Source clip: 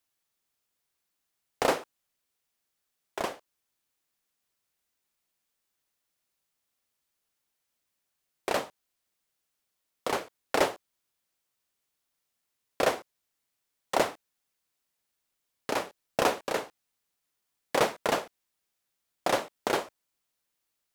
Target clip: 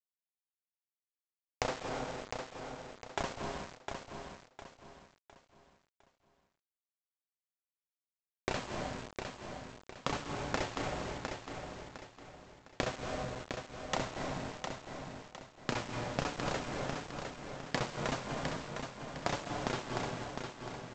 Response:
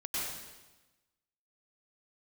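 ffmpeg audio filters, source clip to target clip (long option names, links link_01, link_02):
-filter_complex "[0:a]asubboost=boost=7:cutoff=160,flanger=delay=6.8:depth=1.6:regen=56:speed=0.98:shape=triangular,asplit=2[link_01][link_02];[link_02]highshelf=frequency=2100:gain=-11[link_03];[1:a]atrim=start_sample=2205,adelay=68[link_04];[link_03][link_04]afir=irnorm=-1:irlink=0,volume=-11dB[link_05];[link_01][link_05]amix=inputs=2:normalize=0,acompressor=threshold=-44dB:ratio=8,aresample=16000,aeval=exprs='val(0)*gte(abs(val(0)),0.00237)':channel_layout=same,aresample=44100,aecho=1:1:707|1414|2121|2828:0.501|0.18|0.065|0.0234,volume=11.5dB"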